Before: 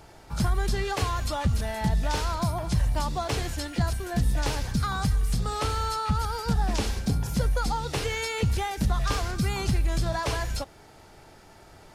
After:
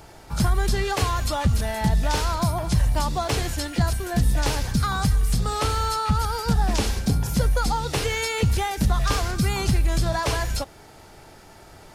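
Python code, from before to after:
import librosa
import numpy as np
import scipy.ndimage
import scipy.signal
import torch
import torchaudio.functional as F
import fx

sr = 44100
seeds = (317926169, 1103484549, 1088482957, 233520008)

y = fx.high_shelf(x, sr, hz=9300.0, db=4.5)
y = y * 10.0 ** (4.0 / 20.0)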